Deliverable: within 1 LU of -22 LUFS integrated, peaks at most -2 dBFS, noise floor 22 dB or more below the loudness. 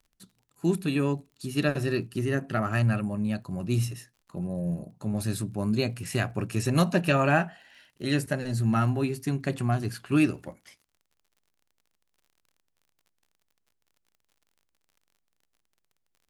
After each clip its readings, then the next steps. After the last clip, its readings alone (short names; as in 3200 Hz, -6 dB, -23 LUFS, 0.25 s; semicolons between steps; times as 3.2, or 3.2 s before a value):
ticks 39/s; loudness -28.0 LUFS; peak -9.0 dBFS; loudness target -22.0 LUFS
-> de-click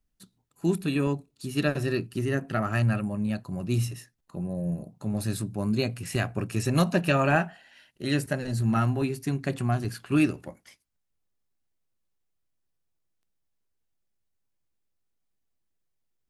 ticks 0.25/s; loudness -28.0 LUFS; peak -9.0 dBFS; loudness target -22.0 LUFS
-> gain +6 dB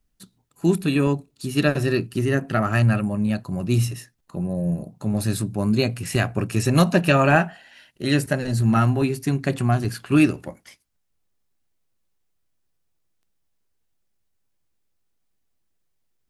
loudness -22.0 LUFS; peak -3.0 dBFS; noise floor -71 dBFS